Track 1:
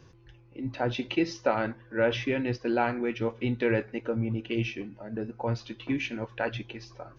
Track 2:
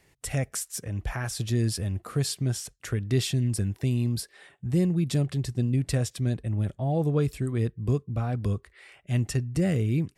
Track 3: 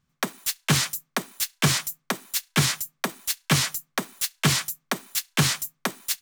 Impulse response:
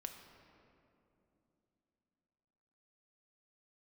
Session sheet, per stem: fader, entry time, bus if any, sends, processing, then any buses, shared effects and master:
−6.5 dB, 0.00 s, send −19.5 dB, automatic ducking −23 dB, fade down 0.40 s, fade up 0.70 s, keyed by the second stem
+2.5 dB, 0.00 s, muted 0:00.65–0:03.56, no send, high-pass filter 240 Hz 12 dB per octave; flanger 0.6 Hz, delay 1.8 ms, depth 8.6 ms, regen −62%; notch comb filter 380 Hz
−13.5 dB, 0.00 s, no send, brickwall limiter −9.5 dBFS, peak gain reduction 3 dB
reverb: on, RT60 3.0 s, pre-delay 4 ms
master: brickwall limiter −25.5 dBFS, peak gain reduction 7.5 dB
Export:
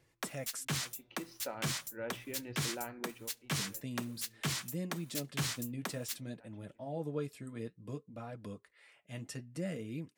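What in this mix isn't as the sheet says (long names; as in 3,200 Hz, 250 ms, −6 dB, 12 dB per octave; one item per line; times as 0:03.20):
stem 1 −6.5 dB → −17.0 dB
stem 2 +2.5 dB → −5.0 dB
master: missing brickwall limiter −25.5 dBFS, peak gain reduction 7.5 dB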